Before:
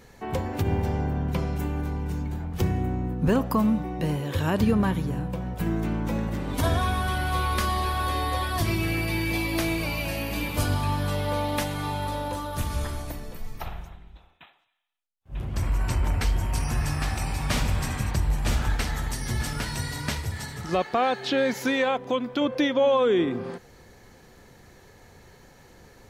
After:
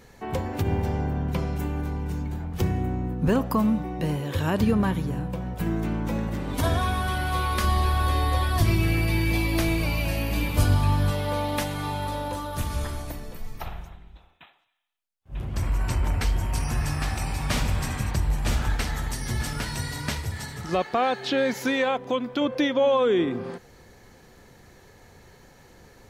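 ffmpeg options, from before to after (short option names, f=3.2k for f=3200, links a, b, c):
-filter_complex "[0:a]asettb=1/sr,asplit=3[a][b][c];[a]atrim=end=7.644[d];[b]atrim=start=7.64:end=11.11,asetpts=PTS-STARTPTS,afade=t=in:d=0.004:c=qsin,afade=t=out:st=3.466:d=0.004:c=qsin,lowshelf=f=130:g=9[e];[c]atrim=start=11.106[f];[d][e]acrossfade=d=0.004:c1=hsin:c2=qsin[g];[g][f]acrossfade=d=0.004:c1=qsin:c2=hsin"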